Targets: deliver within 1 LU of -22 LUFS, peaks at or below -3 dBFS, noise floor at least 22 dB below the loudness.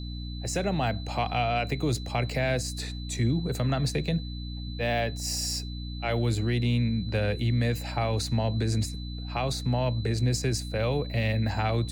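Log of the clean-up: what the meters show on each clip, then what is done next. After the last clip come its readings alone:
hum 60 Hz; harmonics up to 300 Hz; hum level -33 dBFS; steady tone 4000 Hz; tone level -44 dBFS; loudness -28.5 LUFS; peak -15.0 dBFS; loudness target -22.0 LUFS
-> de-hum 60 Hz, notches 5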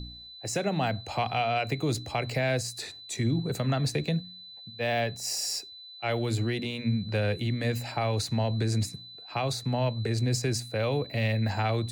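hum none; steady tone 4000 Hz; tone level -44 dBFS
-> notch 4000 Hz, Q 30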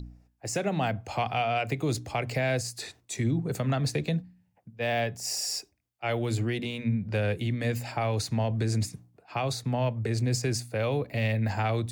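steady tone none; loudness -29.5 LUFS; peak -16.5 dBFS; loudness target -22.0 LUFS
-> gain +7.5 dB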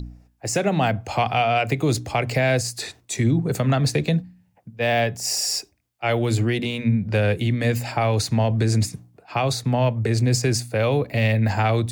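loudness -22.0 LUFS; peak -9.0 dBFS; noise floor -62 dBFS

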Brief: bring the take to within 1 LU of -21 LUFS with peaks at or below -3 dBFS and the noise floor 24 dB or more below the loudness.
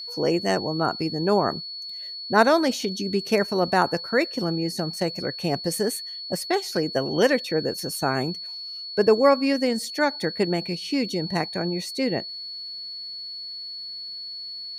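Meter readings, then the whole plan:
steady tone 4400 Hz; tone level -33 dBFS; loudness -25.0 LUFS; peak -4.0 dBFS; loudness target -21.0 LUFS
-> notch 4400 Hz, Q 30; gain +4 dB; limiter -3 dBFS

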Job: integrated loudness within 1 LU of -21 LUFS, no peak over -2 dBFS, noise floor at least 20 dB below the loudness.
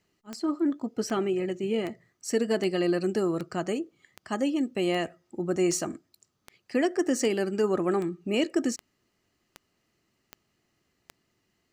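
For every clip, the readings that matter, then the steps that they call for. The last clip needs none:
clicks 15; loudness -28.5 LUFS; peak -14.5 dBFS; loudness target -21.0 LUFS
-> de-click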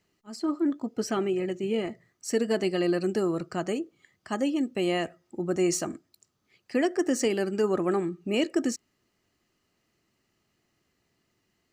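clicks 0; loudness -28.5 LUFS; peak -14.5 dBFS; loudness target -21.0 LUFS
-> gain +7.5 dB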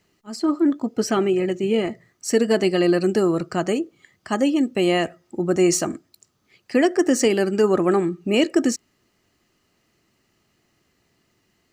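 loudness -21.0 LUFS; peak -7.0 dBFS; noise floor -68 dBFS

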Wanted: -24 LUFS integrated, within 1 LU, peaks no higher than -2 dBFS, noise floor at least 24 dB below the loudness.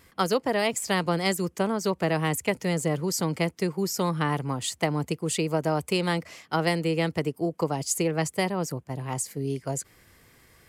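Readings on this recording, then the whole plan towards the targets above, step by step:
loudness -27.5 LUFS; peak -10.0 dBFS; loudness target -24.0 LUFS
-> gain +3.5 dB

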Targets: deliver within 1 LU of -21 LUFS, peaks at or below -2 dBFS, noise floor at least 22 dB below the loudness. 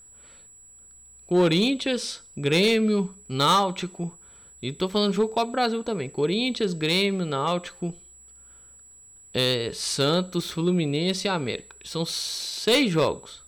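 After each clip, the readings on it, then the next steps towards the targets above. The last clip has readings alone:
clipped 0.6%; flat tops at -14.5 dBFS; steady tone 7800 Hz; tone level -48 dBFS; loudness -24.5 LUFS; peak -14.5 dBFS; loudness target -21.0 LUFS
-> clip repair -14.5 dBFS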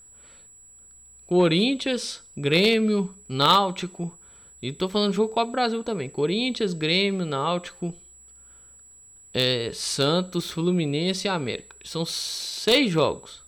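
clipped 0.0%; steady tone 7800 Hz; tone level -48 dBFS
-> notch 7800 Hz, Q 30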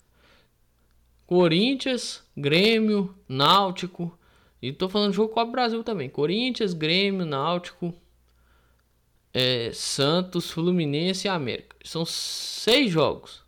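steady tone none; loudness -24.0 LUFS; peak -5.5 dBFS; loudness target -21.0 LUFS
-> gain +3 dB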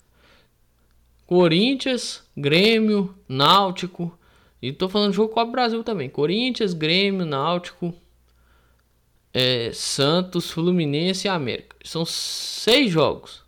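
loudness -21.0 LUFS; peak -2.5 dBFS; noise floor -62 dBFS

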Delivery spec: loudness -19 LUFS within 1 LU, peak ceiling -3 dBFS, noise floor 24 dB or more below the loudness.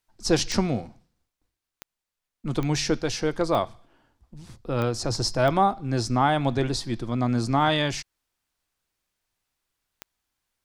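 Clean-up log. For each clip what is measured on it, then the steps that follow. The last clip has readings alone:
clicks 7; loudness -25.0 LUFS; peak -8.0 dBFS; loudness target -19.0 LUFS
-> de-click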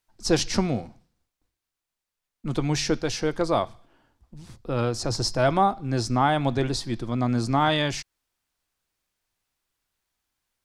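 clicks 0; loudness -25.0 LUFS; peak -8.0 dBFS; loudness target -19.0 LUFS
-> gain +6 dB; limiter -3 dBFS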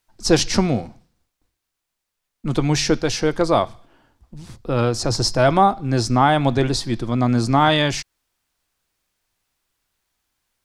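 loudness -19.0 LUFS; peak -3.0 dBFS; noise floor -80 dBFS

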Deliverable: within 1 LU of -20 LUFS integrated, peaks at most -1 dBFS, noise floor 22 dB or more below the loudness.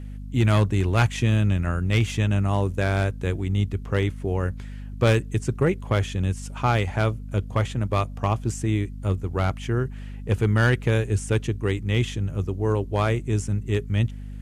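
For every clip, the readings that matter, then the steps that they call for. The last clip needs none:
clipped 0.3%; flat tops at -12.5 dBFS; hum 50 Hz; harmonics up to 250 Hz; hum level -33 dBFS; loudness -24.5 LUFS; peak -12.5 dBFS; loudness target -20.0 LUFS
-> clip repair -12.5 dBFS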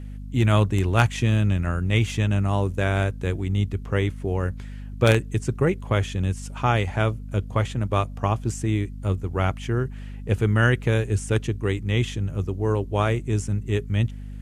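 clipped 0.0%; hum 50 Hz; harmonics up to 250 Hz; hum level -33 dBFS
-> de-hum 50 Hz, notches 5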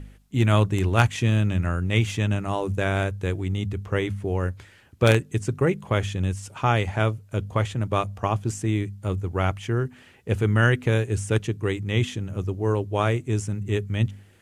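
hum none; loudness -25.0 LUFS; peak -2.5 dBFS; loudness target -20.0 LUFS
-> gain +5 dB; limiter -1 dBFS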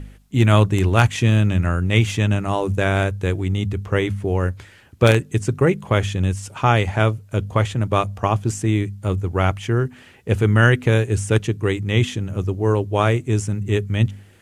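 loudness -20.0 LUFS; peak -1.0 dBFS; noise floor -48 dBFS

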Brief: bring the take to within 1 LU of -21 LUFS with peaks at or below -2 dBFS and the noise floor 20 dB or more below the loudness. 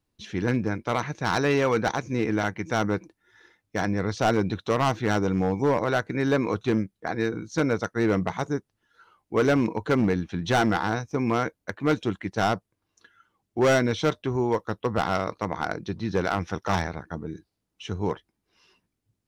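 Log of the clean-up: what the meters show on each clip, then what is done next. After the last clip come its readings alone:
clipped 1.2%; flat tops at -16.0 dBFS; loudness -26.0 LUFS; peak -16.0 dBFS; loudness target -21.0 LUFS
-> clip repair -16 dBFS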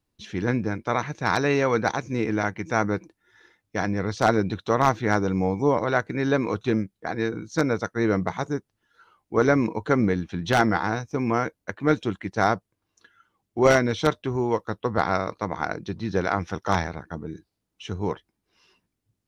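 clipped 0.0%; loudness -25.0 LUFS; peak -7.0 dBFS; loudness target -21.0 LUFS
-> gain +4 dB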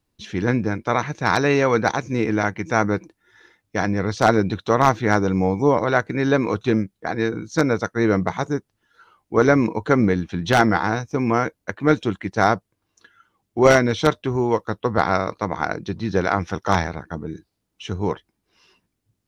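loudness -21.0 LUFS; peak -3.0 dBFS; noise floor -77 dBFS

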